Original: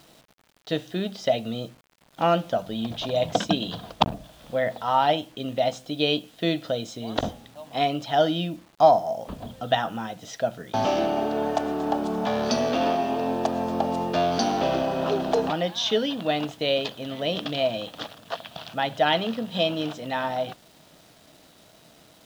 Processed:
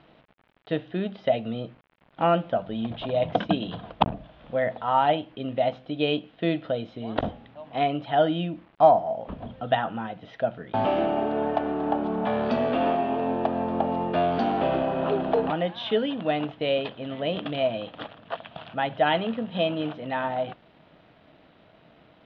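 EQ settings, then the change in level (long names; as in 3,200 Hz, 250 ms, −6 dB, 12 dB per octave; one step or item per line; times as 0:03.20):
low-pass filter 3,100 Hz 24 dB per octave
high-frequency loss of the air 99 metres
0.0 dB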